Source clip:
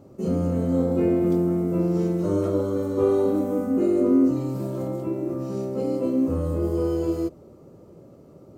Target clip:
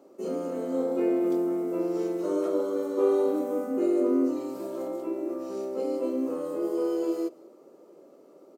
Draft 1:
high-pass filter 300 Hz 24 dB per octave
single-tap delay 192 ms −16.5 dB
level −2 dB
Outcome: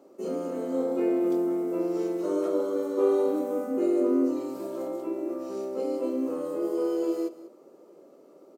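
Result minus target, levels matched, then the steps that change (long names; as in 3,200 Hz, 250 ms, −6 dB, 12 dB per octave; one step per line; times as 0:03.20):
echo-to-direct +8.5 dB
change: single-tap delay 192 ms −25 dB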